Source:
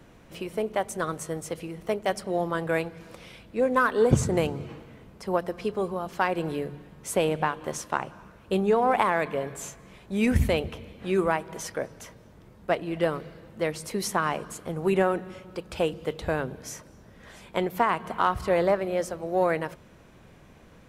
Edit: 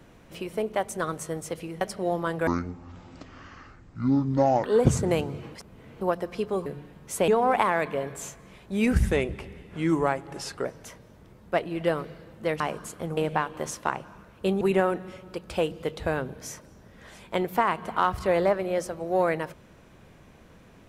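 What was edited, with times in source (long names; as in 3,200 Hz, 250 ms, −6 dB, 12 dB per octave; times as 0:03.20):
0:01.81–0:02.09: remove
0:02.75–0:03.90: play speed 53%
0:04.81–0:05.27: reverse
0:05.92–0:06.62: remove
0:07.24–0:08.68: move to 0:14.83
0:10.33–0:11.81: play speed 86%
0:13.76–0:14.26: remove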